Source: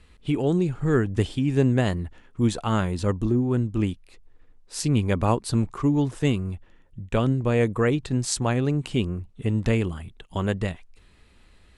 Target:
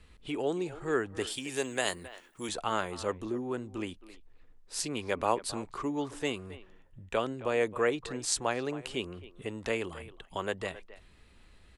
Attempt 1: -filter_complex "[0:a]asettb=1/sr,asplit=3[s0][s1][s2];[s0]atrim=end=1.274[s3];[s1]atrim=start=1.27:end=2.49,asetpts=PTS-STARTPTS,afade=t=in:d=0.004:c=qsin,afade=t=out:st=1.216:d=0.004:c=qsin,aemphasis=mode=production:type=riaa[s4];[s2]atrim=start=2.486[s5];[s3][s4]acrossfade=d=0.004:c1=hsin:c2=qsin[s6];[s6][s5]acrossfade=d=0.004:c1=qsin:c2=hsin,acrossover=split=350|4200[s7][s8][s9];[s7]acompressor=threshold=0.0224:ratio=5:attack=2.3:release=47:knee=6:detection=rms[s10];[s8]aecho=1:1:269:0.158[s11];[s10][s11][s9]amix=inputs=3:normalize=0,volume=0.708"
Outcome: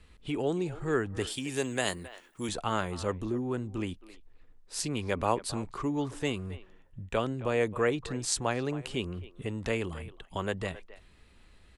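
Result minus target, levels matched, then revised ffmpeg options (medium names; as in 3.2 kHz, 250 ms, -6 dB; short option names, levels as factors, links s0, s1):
compression: peak gain reduction -9 dB
-filter_complex "[0:a]asettb=1/sr,asplit=3[s0][s1][s2];[s0]atrim=end=1.274[s3];[s1]atrim=start=1.27:end=2.49,asetpts=PTS-STARTPTS,afade=t=in:d=0.004:c=qsin,afade=t=out:st=1.216:d=0.004:c=qsin,aemphasis=mode=production:type=riaa[s4];[s2]atrim=start=2.486[s5];[s3][s4]acrossfade=d=0.004:c1=hsin:c2=qsin[s6];[s6][s5]acrossfade=d=0.004:c1=qsin:c2=hsin,acrossover=split=350|4200[s7][s8][s9];[s7]acompressor=threshold=0.00596:ratio=5:attack=2.3:release=47:knee=6:detection=rms[s10];[s8]aecho=1:1:269:0.158[s11];[s10][s11][s9]amix=inputs=3:normalize=0,volume=0.708"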